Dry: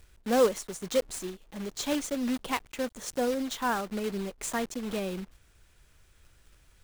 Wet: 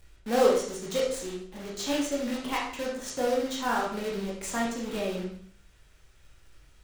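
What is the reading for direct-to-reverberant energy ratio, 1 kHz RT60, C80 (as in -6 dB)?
-4.0 dB, 0.55 s, 7.5 dB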